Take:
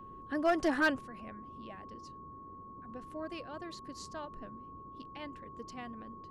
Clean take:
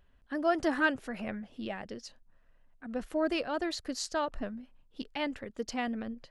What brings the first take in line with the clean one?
clipped peaks rebuilt −21.5 dBFS
notch filter 1,100 Hz, Q 30
noise reduction from a noise print 13 dB
level 0 dB, from 0:01.01 +12 dB

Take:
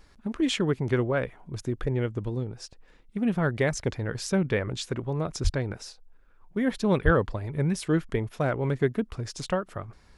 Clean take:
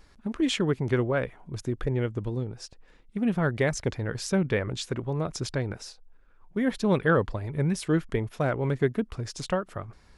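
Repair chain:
high-pass at the plosives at 0:05.43/0:07.04

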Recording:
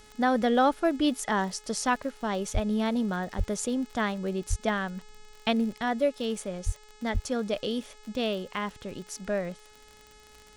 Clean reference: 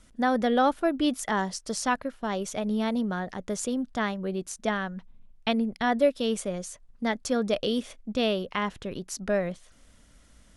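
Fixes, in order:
click removal
hum removal 424.9 Hz, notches 20
high-pass at the plosives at 0:02.53/0:03.37/0:04.49/0:06.65/0:07.13
level correction +3.5 dB, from 0:05.72

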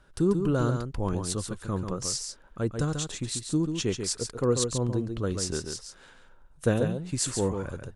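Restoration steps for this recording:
echo removal 139 ms −6.5 dB

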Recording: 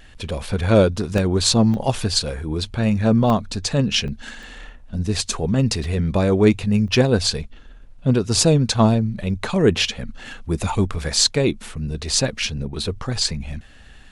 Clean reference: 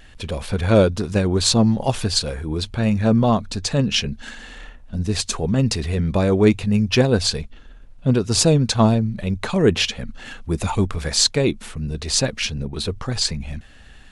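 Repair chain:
repair the gap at 0:01.18/0:01.74/0:03.30/0:04.08/0:04.43/0:05.84/0:06.88, 1.3 ms

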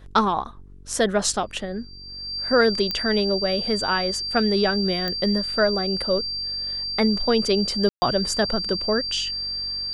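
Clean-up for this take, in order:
click removal
hum removal 47.1 Hz, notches 9
notch filter 4,700 Hz, Q 30
ambience match 0:07.89–0:08.02

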